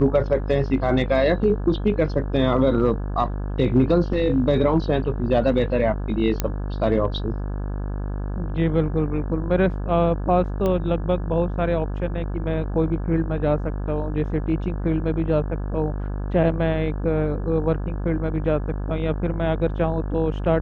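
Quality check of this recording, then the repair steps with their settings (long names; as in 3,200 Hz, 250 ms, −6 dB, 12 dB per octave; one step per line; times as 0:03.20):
mains buzz 50 Hz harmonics 34 −27 dBFS
0:06.40: click −7 dBFS
0:10.66: click −13 dBFS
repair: click removal
hum removal 50 Hz, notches 34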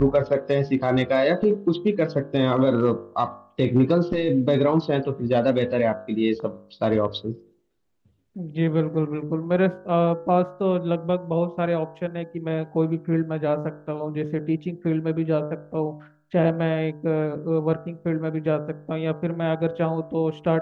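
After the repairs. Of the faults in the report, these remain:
none of them is left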